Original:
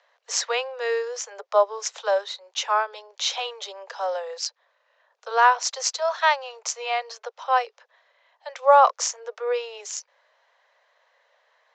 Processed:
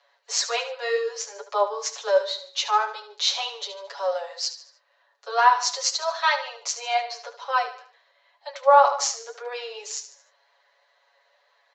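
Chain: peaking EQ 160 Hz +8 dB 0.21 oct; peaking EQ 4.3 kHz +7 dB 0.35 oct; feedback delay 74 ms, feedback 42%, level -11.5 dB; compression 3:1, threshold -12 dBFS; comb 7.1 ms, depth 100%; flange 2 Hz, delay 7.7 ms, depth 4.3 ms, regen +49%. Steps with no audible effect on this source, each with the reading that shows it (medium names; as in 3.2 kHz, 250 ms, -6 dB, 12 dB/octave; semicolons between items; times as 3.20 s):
peaking EQ 160 Hz: input has nothing below 380 Hz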